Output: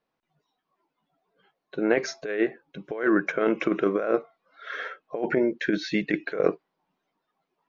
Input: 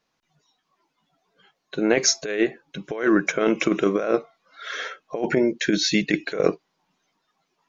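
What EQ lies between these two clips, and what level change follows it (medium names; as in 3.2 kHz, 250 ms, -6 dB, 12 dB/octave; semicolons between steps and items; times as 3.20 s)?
peaking EQ 490 Hz +5.5 dB 2.3 oct; dynamic bell 1.6 kHz, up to +6 dB, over -37 dBFS, Q 1.3; distance through air 180 m; -7.5 dB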